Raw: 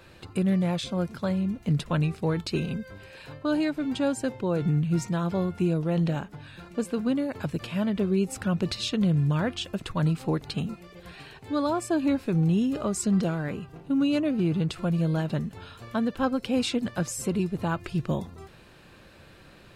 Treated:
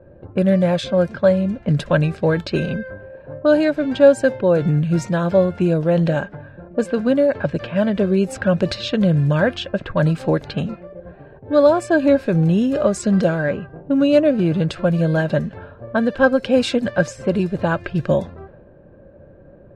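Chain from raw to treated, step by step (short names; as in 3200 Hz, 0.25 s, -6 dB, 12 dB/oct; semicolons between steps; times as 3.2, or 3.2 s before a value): low-pass opened by the level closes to 420 Hz, open at -23 dBFS; high shelf 10000 Hz -10.5 dB; small resonant body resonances 570/1600 Hz, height 13 dB, ringing for 35 ms; gain +6.5 dB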